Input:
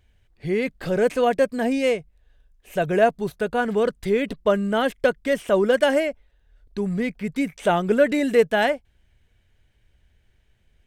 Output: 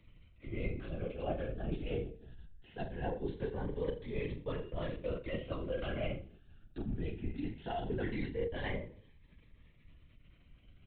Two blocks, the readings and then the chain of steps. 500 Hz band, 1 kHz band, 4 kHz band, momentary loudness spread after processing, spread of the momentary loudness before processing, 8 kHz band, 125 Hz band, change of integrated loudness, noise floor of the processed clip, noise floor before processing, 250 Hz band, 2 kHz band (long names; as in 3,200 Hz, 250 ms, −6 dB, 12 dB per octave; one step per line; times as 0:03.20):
−19.0 dB, −20.0 dB, −17.5 dB, 9 LU, 8 LU, below −35 dB, −6.5 dB, −17.5 dB, −63 dBFS, −63 dBFS, −16.5 dB, −20.0 dB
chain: hum removal 66.75 Hz, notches 9
dynamic equaliser 1,300 Hz, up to −6 dB, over −40 dBFS, Q 1.9
comb filter 4.3 ms, depth 81%
reversed playback
downward compressor 10 to 1, threshold −31 dBFS, peak gain reduction 22.5 dB
reversed playback
flutter between parallel walls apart 6.5 metres, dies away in 0.4 s
linear-prediction vocoder at 8 kHz whisper
phaser whose notches keep moving one way rising 0.2 Hz
level −3.5 dB